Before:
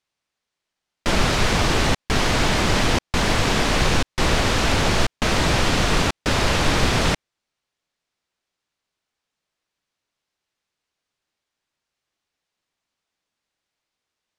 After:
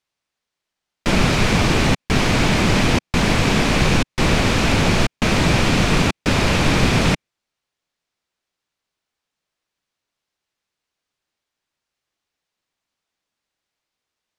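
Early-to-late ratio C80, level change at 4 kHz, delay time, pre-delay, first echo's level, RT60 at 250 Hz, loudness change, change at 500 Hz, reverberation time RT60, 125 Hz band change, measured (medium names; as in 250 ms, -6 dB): no reverb, +0.5 dB, no echo, no reverb, no echo, no reverb, +2.5 dB, +2.0 dB, no reverb, +4.5 dB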